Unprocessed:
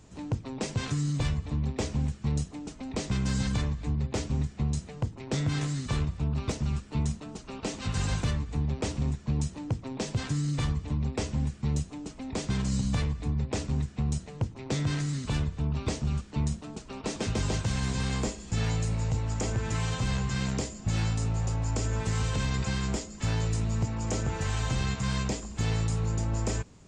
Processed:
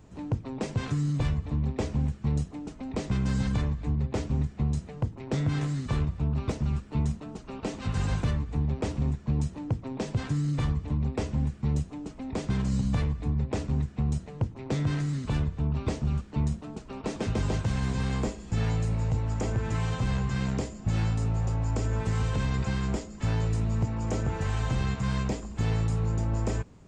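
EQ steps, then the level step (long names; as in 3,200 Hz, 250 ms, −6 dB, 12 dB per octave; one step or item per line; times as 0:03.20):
parametric band 7,200 Hz −9 dB 2.7 octaves
+1.5 dB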